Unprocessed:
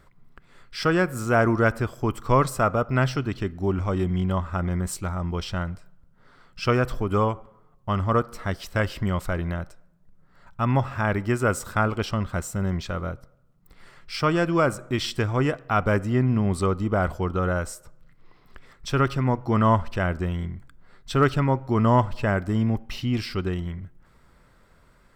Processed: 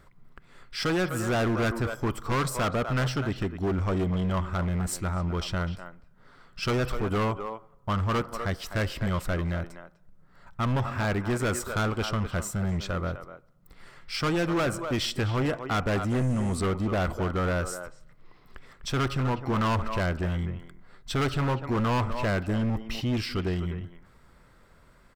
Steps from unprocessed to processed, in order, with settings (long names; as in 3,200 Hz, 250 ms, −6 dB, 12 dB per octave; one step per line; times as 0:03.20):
far-end echo of a speakerphone 250 ms, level −11 dB
0:16.09–0:16.57: noise in a band 5,900–9,700 Hz −53 dBFS
gain into a clipping stage and back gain 23 dB